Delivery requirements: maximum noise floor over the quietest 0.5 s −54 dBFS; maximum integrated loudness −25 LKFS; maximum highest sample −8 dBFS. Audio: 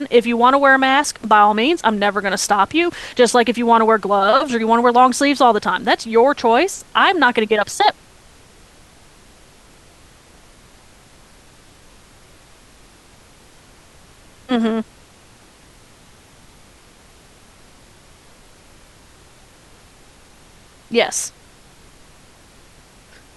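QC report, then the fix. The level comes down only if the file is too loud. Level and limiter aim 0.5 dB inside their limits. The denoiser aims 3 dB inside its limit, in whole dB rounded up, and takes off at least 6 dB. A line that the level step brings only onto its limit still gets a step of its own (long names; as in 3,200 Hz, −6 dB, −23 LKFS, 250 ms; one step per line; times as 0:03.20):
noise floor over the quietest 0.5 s −47 dBFS: out of spec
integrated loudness −15.5 LKFS: out of spec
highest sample −2.0 dBFS: out of spec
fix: level −10 dB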